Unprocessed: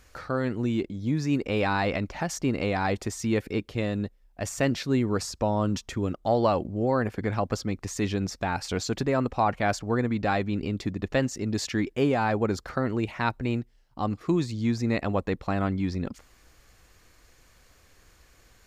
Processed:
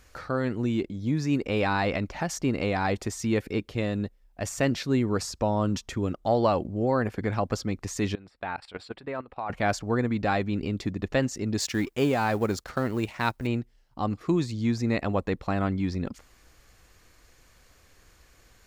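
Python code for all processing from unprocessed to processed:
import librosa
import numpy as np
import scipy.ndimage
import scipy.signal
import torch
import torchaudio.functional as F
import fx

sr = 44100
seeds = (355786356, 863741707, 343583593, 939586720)

y = fx.chain(x, sr, fx.moving_average(points=7),
    fx.low_shelf(hz=380.0, db=-11.5),
    fx.level_steps(step_db=16), at=(8.15, 9.5))
y = fx.chain(y, sr, fx.law_mismatch(coded='A'),
    fx.high_shelf(hz=4400.0, db=7.5), at=(11.6, 13.47))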